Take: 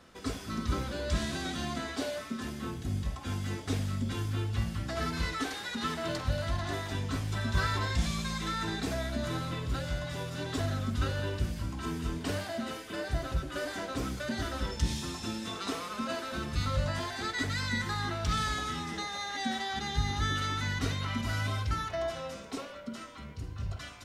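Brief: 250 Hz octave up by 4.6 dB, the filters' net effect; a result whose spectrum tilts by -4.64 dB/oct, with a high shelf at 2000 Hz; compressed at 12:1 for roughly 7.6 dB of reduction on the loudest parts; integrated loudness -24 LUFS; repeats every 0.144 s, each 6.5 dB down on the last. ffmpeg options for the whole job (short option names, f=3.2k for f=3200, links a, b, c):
-af "equalizer=f=250:t=o:g=5.5,highshelf=f=2k:g=3.5,acompressor=threshold=-30dB:ratio=12,aecho=1:1:144|288|432|576|720|864:0.473|0.222|0.105|0.0491|0.0231|0.0109,volume=10dB"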